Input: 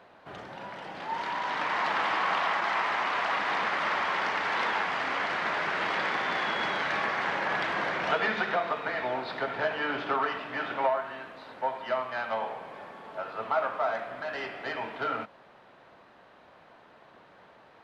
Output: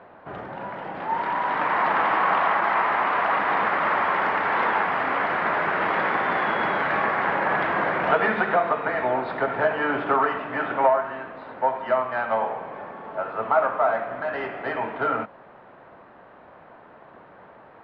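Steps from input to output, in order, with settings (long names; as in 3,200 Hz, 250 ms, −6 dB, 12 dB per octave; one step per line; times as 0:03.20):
low-pass filter 1,700 Hz 12 dB per octave
level +8 dB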